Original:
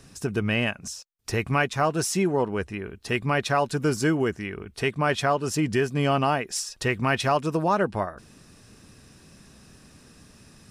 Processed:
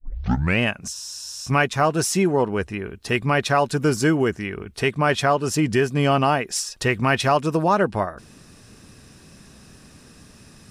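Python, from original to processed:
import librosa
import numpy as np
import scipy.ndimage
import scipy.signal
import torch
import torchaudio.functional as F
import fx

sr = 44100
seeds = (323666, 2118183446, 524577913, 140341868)

y = fx.tape_start_head(x, sr, length_s=0.59)
y = fx.spec_freeze(y, sr, seeds[0], at_s=0.96, hold_s=0.51)
y = F.gain(torch.from_numpy(y), 4.0).numpy()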